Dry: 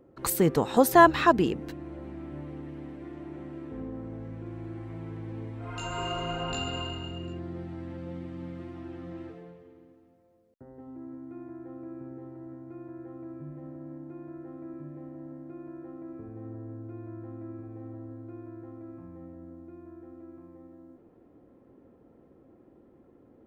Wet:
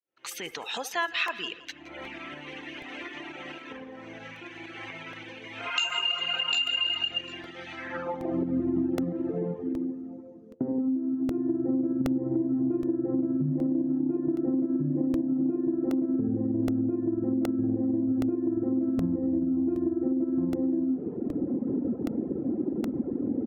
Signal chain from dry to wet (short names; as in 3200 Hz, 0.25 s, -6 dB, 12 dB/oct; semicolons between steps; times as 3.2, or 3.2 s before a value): opening faded in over 0.80 s; recorder AGC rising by 31 dB/s; HPF 42 Hz; bell 6200 Hz +11.5 dB 0.21 oct; notch 1100 Hz, Q 18; reverb, pre-delay 65 ms, DRR 7.5 dB; reverb removal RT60 1.4 s; feedback echo 0.169 s, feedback 39%, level -18 dB; band-pass sweep 2800 Hz -> 240 Hz, 7.74–8.6; compressor 6:1, threshold -29 dBFS, peak gain reduction 13 dB; 9.03–11.31 low shelf 160 Hz -9 dB; crackling interface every 0.77 s, samples 64, repeat, from 0.51; gain +5.5 dB